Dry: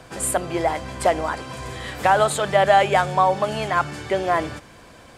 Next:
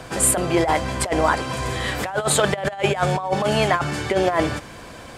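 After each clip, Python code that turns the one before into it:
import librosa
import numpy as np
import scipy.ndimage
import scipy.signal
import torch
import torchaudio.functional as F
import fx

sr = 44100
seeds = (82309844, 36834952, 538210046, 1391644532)

y = fx.over_compress(x, sr, threshold_db=-22.0, ratio=-0.5)
y = y * librosa.db_to_amplitude(3.5)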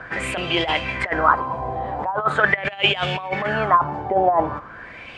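y = fx.high_shelf(x, sr, hz=3400.0, db=10.0)
y = fx.filter_lfo_lowpass(y, sr, shape='sine', hz=0.42, low_hz=770.0, high_hz=3000.0, q=5.9)
y = y * librosa.db_to_amplitude(-5.5)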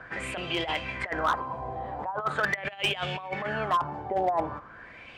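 y = np.clip(x, -10.0 ** (-10.5 / 20.0), 10.0 ** (-10.5 / 20.0))
y = y * librosa.db_to_amplitude(-8.5)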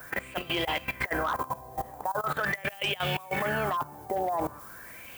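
y = fx.dmg_noise_colour(x, sr, seeds[0], colour='violet', level_db=-48.0)
y = fx.level_steps(y, sr, step_db=17)
y = y * librosa.db_to_amplitude(5.5)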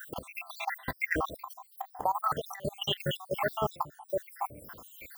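y = fx.spec_dropout(x, sr, seeds[1], share_pct=73)
y = y * librosa.db_to_amplitude(3.0)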